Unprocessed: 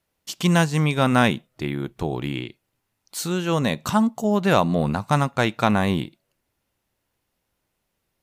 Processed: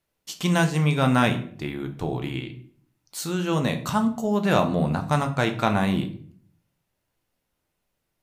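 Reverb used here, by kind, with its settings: simulated room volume 60 m³, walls mixed, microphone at 0.37 m; trim -3.5 dB

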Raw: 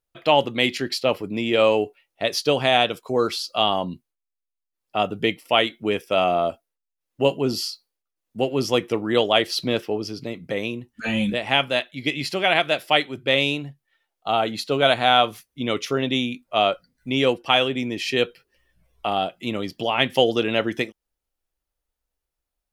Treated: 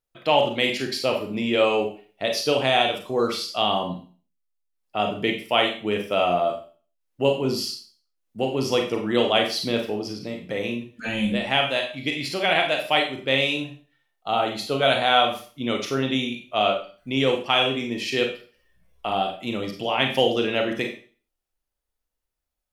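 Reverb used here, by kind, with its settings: Schroeder reverb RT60 0.4 s, combs from 30 ms, DRR 2.5 dB; trim -3 dB

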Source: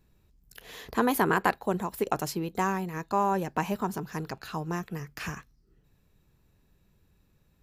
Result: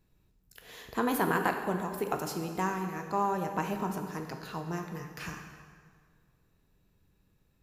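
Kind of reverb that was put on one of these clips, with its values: plate-style reverb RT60 1.9 s, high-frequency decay 0.75×, DRR 4 dB; trim -4.5 dB

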